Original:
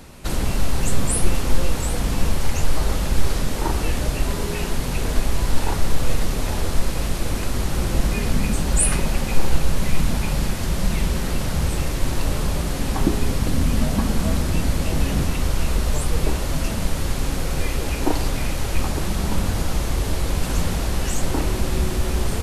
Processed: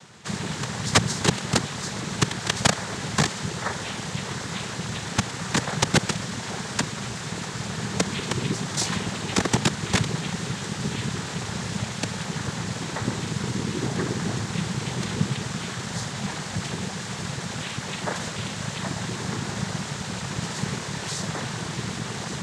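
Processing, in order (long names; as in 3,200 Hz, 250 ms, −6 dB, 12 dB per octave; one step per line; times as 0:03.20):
Chebyshev band-stop filter 200–750 Hz, order 2
wrap-around overflow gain 8.5 dB
cochlear-implant simulation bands 6
level −1 dB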